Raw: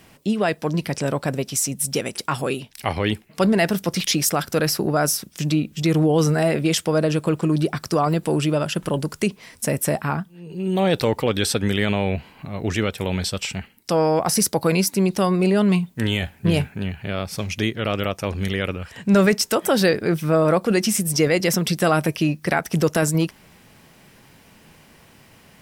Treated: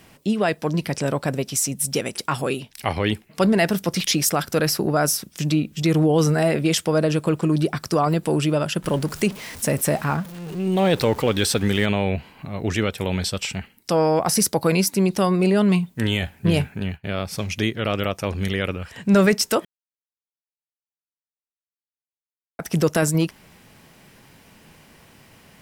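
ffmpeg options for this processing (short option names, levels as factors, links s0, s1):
-filter_complex "[0:a]asettb=1/sr,asplit=3[s0][s1][s2];[s0]atrim=end=8.844[s3];[s1]atrim=start=8.84:end=11.86,asetpts=PTS-STARTPTS,afade=t=in:d=0.004:c=qsin,afade=t=out:st=3.016:d=0.004:c=qsin,aeval=exprs='val(0)+0.5*0.0211*sgn(val(0))':c=same[s4];[s2]atrim=start=11.856[s5];[s3][s4]acrossfade=d=0.004:c1=hsin:c2=qsin[s6];[s6][s5]acrossfade=d=0.004:c1=qsin:c2=hsin,asettb=1/sr,asplit=3[s7][s8][s9];[s7]atrim=end=16.804[s10];[s8]atrim=start=16.8:end=17.23,asetpts=PTS-STARTPTS,afade=t=in:d=0.004:c=qsin,afade=t=out:st=0.426:d=0.004:c=qsin,agate=range=0.0224:threshold=0.0316:ratio=3:release=100:detection=peak[s11];[s9]atrim=start=17.226[s12];[s10][s11]acrossfade=d=0.004:c1=hsin:c2=qsin[s13];[s13][s12]acrossfade=d=0.004:c1=qsin:c2=hsin,asplit=3[s14][s15][s16];[s14]atrim=end=19.65,asetpts=PTS-STARTPTS,afade=t=out:st=19.646:d=0.004:c=hsin[s17];[s15]atrim=start=19.65:end=22.59,asetpts=PTS-STARTPTS,volume=0[s18];[s16]atrim=start=22.59,asetpts=PTS-STARTPTS,afade=t=in:d=0.004:c=hsin[s19];[s17][s18][s19]concat=n=3:v=0:a=1"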